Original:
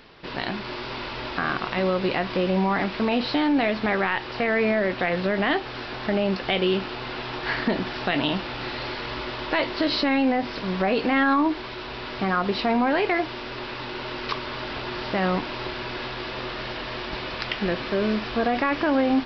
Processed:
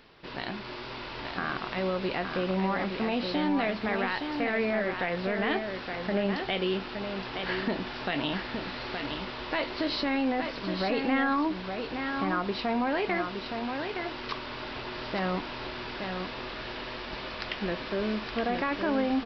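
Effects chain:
0:03.80–0:04.41: surface crackle 400 per second −54 dBFS
single-tap delay 868 ms −6 dB
level −6.5 dB

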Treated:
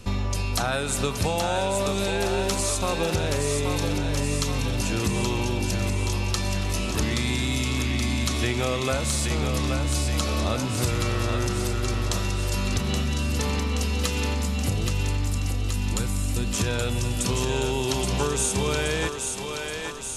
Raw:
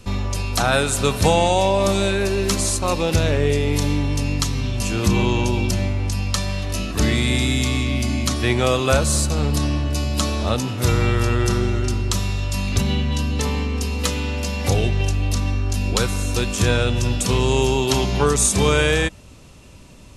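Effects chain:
gain on a spectral selection 0:14.34–0:16.54, 350–6,700 Hz −8 dB
downward compressor, threshold −22 dBFS, peak gain reduction 10.5 dB
on a send: feedback echo with a high-pass in the loop 825 ms, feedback 67%, high-pass 380 Hz, level −4.5 dB

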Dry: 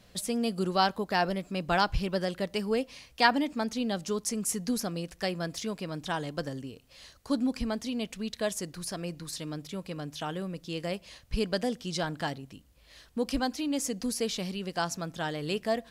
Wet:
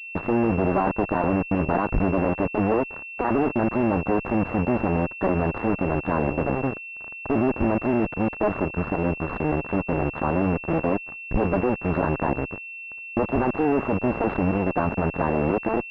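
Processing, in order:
sub-harmonics by changed cycles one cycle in 2, muted
fuzz pedal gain 42 dB, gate −44 dBFS
switching amplifier with a slow clock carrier 2,700 Hz
level −3 dB

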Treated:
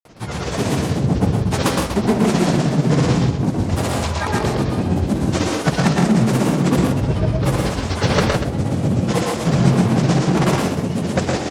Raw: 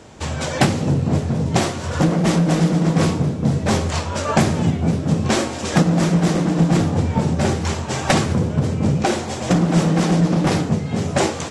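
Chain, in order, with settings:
granular cloud, grains 16 per second, pitch spread up and down by 7 semitones
multi-tap delay 114/136/159/241 ms −3/−7/−7/−10.5 dB

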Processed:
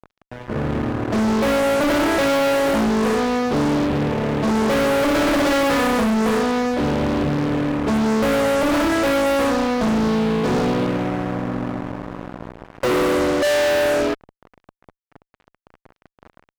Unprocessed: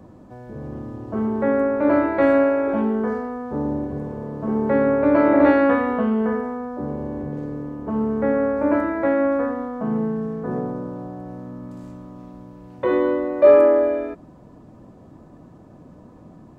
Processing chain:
Chebyshev low-pass filter 2,600 Hz, order 10
fuzz pedal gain 34 dB, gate −38 dBFS
level −3.5 dB

